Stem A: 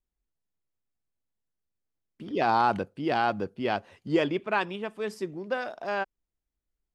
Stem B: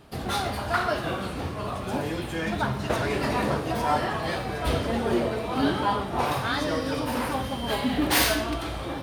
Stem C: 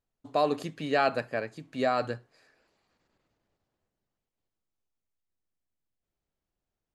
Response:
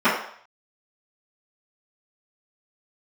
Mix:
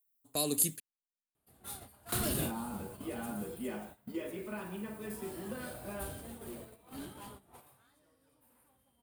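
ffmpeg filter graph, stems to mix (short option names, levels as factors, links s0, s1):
-filter_complex "[0:a]acrossover=split=430|2800[s0][s1][s2];[s0]acompressor=threshold=0.01:ratio=4[s3];[s1]acompressor=threshold=0.0316:ratio=4[s4];[s2]acompressor=threshold=0.002:ratio=4[s5];[s3][s4][s5]amix=inputs=3:normalize=0,volume=0.251,asplit=2[s6][s7];[s7]volume=0.237[s8];[1:a]volume=12.6,asoftclip=hard,volume=0.0794,adelay=1350,volume=3.35,afade=t=out:st=3.26:d=0.74:silence=0.281838,afade=t=in:st=4.82:d=0.68:silence=0.298538,afade=t=out:st=7.39:d=0.53:silence=0.316228[s9];[2:a]aemphasis=mode=production:type=75kf,volume=0.891,asplit=3[s10][s11][s12];[s10]atrim=end=0.8,asetpts=PTS-STARTPTS,afade=t=out:st=0.796:d=0.004:c=hsin[s13];[s11]atrim=start=0.8:end=2.12,asetpts=PTS-STARTPTS,volume=0[s14];[s12]atrim=start=2.12,asetpts=PTS-STARTPTS,afade=t=in:d=0.004:c=hsin[s15];[s13][s14][s15]concat=n=3:v=0:a=1,asplit=2[s16][s17];[s17]apad=whole_len=457686[s18];[s9][s18]sidechaingate=range=0.158:threshold=0.00112:ratio=16:detection=peak[s19];[3:a]atrim=start_sample=2205[s20];[s8][s20]afir=irnorm=-1:irlink=0[s21];[s6][s19][s16][s21]amix=inputs=4:normalize=0,agate=range=0.141:threshold=0.00708:ratio=16:detection=peak,acrossover=split=370|3000[s22][s23][s24];[s23]acompressor=threshold=0.00158:ratio=2[s25];[s22][s25][s24]amix=inputs=3:normalize=0,aexciter=amount=8.9:drive=3.6:freq=7800"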